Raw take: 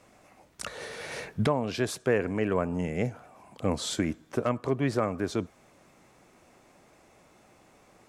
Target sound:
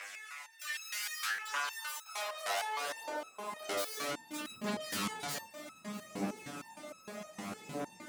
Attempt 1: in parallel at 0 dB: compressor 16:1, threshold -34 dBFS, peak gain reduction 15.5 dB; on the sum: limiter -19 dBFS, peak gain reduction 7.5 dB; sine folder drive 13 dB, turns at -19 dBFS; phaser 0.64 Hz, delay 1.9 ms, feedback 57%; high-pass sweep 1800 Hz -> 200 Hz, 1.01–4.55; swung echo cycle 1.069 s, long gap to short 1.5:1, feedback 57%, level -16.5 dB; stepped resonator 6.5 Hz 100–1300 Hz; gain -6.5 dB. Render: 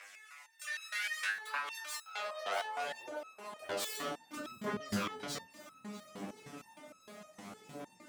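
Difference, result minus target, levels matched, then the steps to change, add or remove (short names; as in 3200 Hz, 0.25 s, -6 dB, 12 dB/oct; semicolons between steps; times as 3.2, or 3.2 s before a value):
sine folder: distortion -15 dB
change: sine folder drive 21 dB, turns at -19 dBFS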